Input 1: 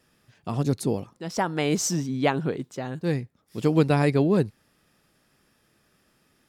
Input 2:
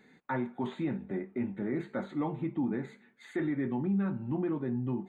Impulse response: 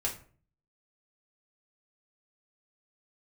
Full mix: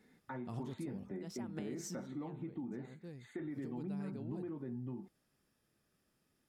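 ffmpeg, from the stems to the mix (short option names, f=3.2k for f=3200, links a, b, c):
-filter_complex "[0:a]acompressor=threshold=-25dB:ratio=6,volume=-2.5dB,afade=t=out:st=1.7:d=0.53:silence=0.354813,afade=t=in:st=3.41:d=0.45:silence=0.375837[a];[1:a]acompressor=threshold=-33dB:ratio=6,volume=-5.5dB,asplit=2[b][c];[c]apad=whole_len=286070[d];[a][d]sidechaincompress=threshold=-48dB:ratio=6:attack=8.9:release=121[e];[e][b]amix=inputs=2:normalize=0,equalizer=f=1.9k:w=0.35:g=-4.5"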